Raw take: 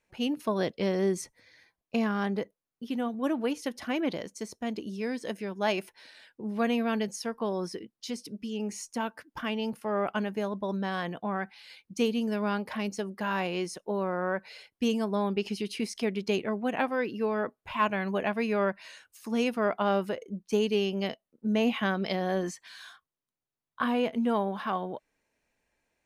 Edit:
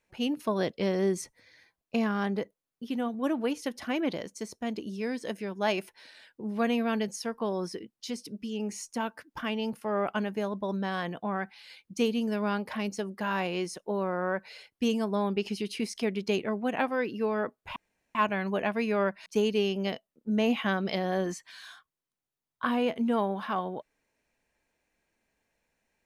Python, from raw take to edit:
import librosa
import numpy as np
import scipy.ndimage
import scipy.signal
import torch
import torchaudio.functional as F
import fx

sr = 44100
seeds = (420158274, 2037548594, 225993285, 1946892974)

y = fx.edit(x, sr, fx.insert_room_tone(at_s=17.76, length_s=0.39),
    fx.cut(start_s=18.87, length_s=1.56), tone=tone)